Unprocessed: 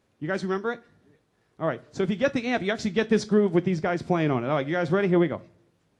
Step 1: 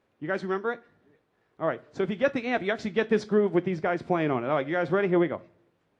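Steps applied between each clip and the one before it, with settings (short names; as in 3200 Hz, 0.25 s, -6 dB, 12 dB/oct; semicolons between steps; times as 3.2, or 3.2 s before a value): tone controls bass -7 dB, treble -12 dB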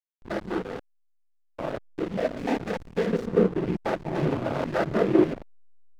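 stepped spectrum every 0.1 s; noise vocoder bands 16; backlash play -28 dBFS; gain +4 dB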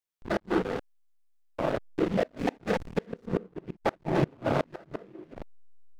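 flipped gate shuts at -17 dBFS, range -30 dB; gain +3 dB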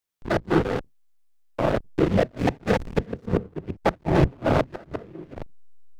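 octaver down 1 oct, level -2 dB; gain +5.5 dB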